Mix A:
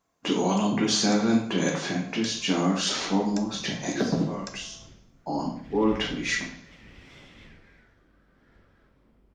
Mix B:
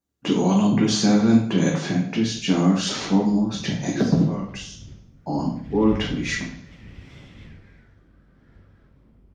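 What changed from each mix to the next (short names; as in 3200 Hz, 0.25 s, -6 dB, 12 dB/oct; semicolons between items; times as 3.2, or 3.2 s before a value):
first sound: muted; master: add bell 94 Hz +12 dB 2.7 oct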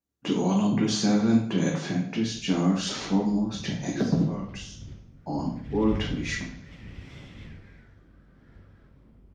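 speech -5.0 dB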